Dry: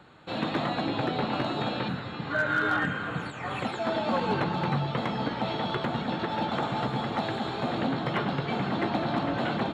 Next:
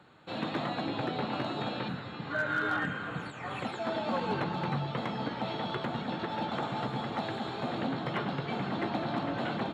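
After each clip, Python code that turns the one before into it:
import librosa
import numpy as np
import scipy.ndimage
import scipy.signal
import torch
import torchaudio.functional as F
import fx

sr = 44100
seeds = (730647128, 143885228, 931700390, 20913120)

y = scipy.signal.sosfilt(scipy.signal.butter(2, 76.0, 'highpass', fs=sr, output='sos'), x)
y = y * librosa.db_to_amplitude(-4.5)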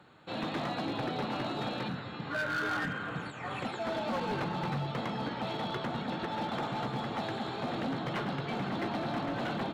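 y = np.clip(x, -10.0 ** (-29.0 / 20.0), 10.0 ** (-29.0 / 20.0))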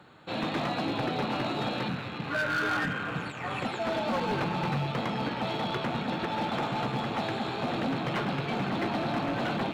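y = fx.rattle_buzz(x, sr, strikes_db=-49.0, level_db=-37.0)
y = y * librosa.db_to_amplitude(4.0)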